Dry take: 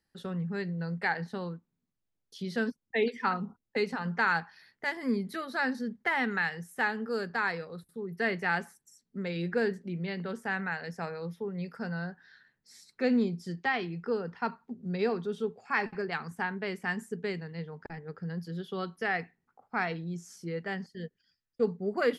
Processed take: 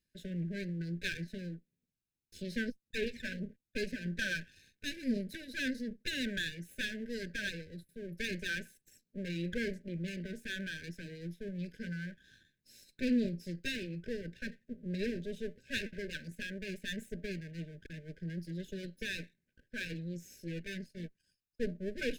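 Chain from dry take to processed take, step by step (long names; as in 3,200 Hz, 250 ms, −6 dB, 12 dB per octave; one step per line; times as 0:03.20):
lower of the sound and its delayed copy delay 0.76 ms
linear-phase brick-wall band-stop 630–1,500 Hz
level −2.5 dB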